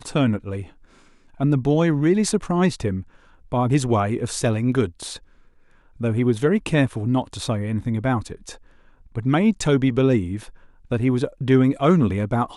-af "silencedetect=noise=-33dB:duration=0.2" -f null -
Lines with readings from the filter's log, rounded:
silence_start: 0.64
silence_end: 1.40 | silence_duration: 0.76
silence_start: 3.02
silence_end: 3.52 | silence_duration: 0.50
silence_start: 5.17
silence_end: 6.00 | silence_duration: 0.84
silence_start: 8.55
silence_end: 9.15 | silence_duration: 0.61
silence_start: 10.49
silence_end: 10.91 | silence_duration: 0.42